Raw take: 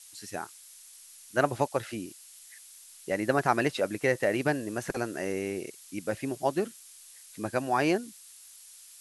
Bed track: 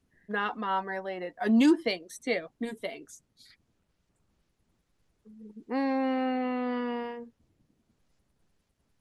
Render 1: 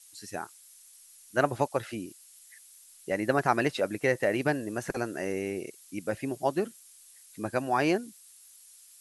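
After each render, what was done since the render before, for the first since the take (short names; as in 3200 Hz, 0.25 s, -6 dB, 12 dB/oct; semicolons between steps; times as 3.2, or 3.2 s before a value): denoiser 6 dB, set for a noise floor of -52 dBFS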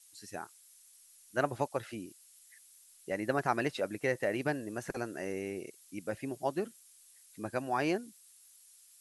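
gain -5.5 dB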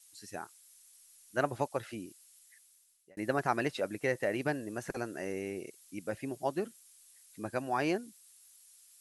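2.03–3.17 fade out equal-power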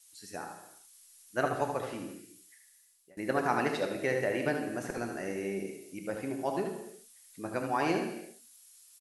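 echo 76 ms -7 dB; non-linear reverb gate 0.37 s falling, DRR 4.5 dB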